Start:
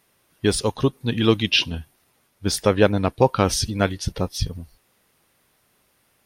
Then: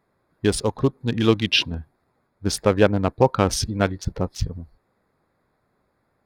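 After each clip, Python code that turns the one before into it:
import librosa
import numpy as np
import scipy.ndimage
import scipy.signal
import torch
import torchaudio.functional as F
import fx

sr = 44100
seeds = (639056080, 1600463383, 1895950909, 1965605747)

y = fx.wiener(x, sr, points=15)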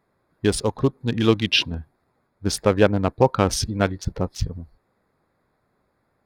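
y = x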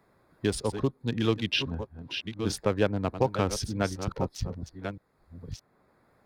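y = fx.reverse_delay(x, sr, ms=622, wet_db=-11)
y = fx.band_squash(y, sr, depth_pct=40)
y = y * 10.0 ** (-7.5 / 20.0)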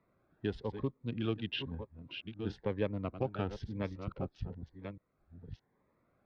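y = scipy.signal.sosfilt(scipy.signal.butter(4, 3300.0, 'lowpass', fs=sr, output='sos'), x)
y = fx.notch_cascade(y, sr, direction='rising', hz=1.0)
y = y * 10.0 ** (-7.5 / 20.0)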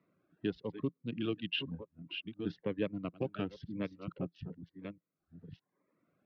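y = fx.dereverb_blind(x, sr, rt60_s=0.71)
y = fx.cabinet(y, sr, low_hz=130.0, low_slope=12, high_hz=5200.0, hz=(170.0, 300.0, 840.0, 2800.0), db=(8, 6, -8, 6))
y = y * 10.0 ** (-1.5 / 20.0)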